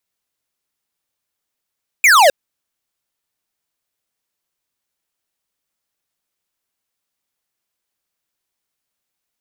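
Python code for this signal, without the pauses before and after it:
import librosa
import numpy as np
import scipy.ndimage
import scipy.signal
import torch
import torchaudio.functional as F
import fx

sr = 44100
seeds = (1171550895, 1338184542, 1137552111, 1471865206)

y = fx.laser_zap(sr, level_db=-9.0, start_hz=2500.0, end_hz=520.0, length_s=0.26, wave='square')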